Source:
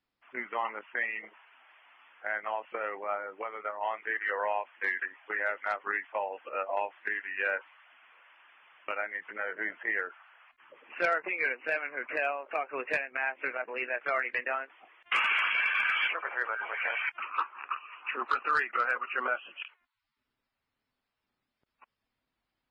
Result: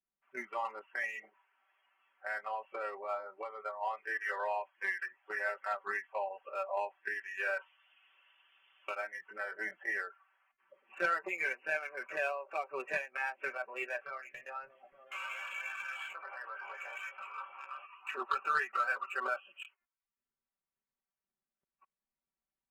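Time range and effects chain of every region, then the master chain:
7.56–8.9 bell 4600 Hz +10.5 dB 1.5 oct + mismatched tape noise reduction encoder only
13.97–17.86 compressor 3:1, threshold -38 dBFS + doubler 15 ms -4.5 dB + repeats that get brighter 0.29 s, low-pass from 200 Hz, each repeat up 1 oct, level -3 dB
whole clip: Wiener smoothing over 9 samples; spectral noise reduction 10 dB; comb 5.2 ms, depth 81%; gain -6 dB

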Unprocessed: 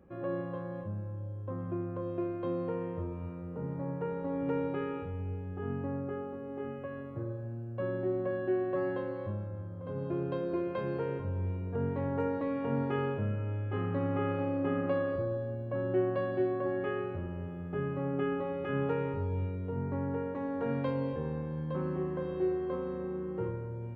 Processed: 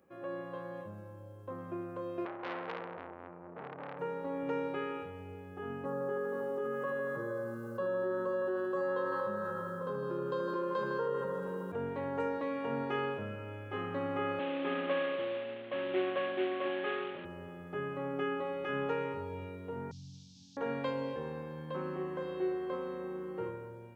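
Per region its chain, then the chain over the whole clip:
2.25–3.99 LPF 1200 Hz + core saturation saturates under 1300 Hz
5.85–11.72 fixed phaser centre 460 Hz, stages 8 + band-limited delay 78 ms, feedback 80%, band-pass 1100 Hz, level -3.5 dB + fast leveller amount 70%
14.39–17.25 CVSD 16 kbps + HPF 160 Hz 24 dB/oct
19.91–20.57 delta modulation 32 kbps, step -49 dBFS + inverse Chebyshev band-stop 320–2000 Hz + high shelf 2700 Hz -8 dB
whole clip: HPF 480 Hz 6 dB/oct; high shelf 3800 Hz +10.5 dB; AGC gain up to 4 dB; gain -3 dB

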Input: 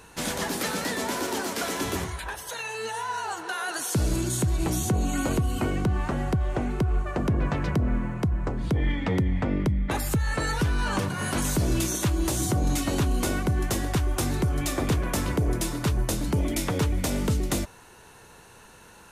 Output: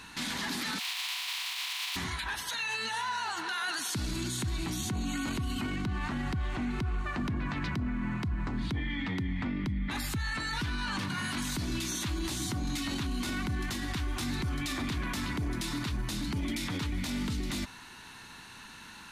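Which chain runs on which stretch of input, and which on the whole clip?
0.78–1.95 spectral contrast lowered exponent 0.13 + rippled Chebyshev high-pass 710 Hz, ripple 9 dB
whole clip: graphic EQ 250/500/1000/2000/4000 Hz +10/-12/+5/+7/+11 dB; limiter -22 dBFS; gain -3.5 dB

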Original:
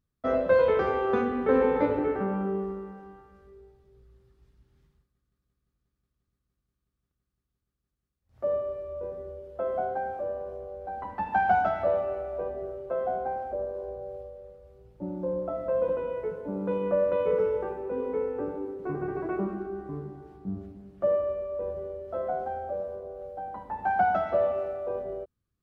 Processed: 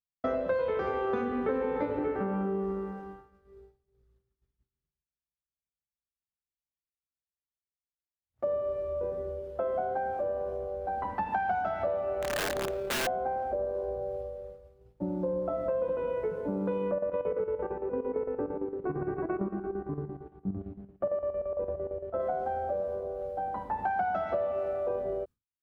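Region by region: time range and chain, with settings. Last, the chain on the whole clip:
12.22–13.07 G.711 law mismatch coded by mu + AM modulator 35 Hz, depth 15% + wrapped overs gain 28.5 dB
16.91–22.2 chopper 8.8 Hz, depth 65%, duty 65% + air absorption 420 m
whole clip: expander -45 dBFS; compressor 5:1, threshold -32 dBFS; gain +4 dB

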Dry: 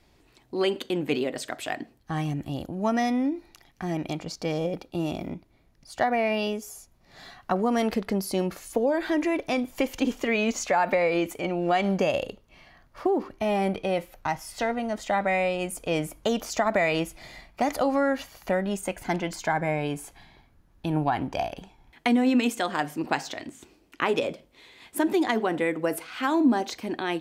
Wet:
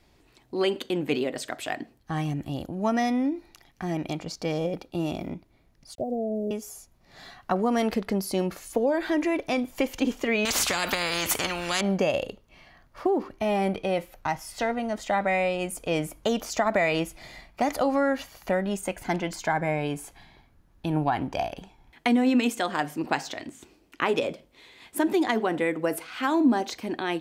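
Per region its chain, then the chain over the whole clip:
5.95–6.51 steep low-pass 610 Hz 48 dB/oct + sample gate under -54.5 dBFS
10.45–11.81 HPF 120 Hz 6 dB/oct + spectral compressor 4:1
whole clip: dry

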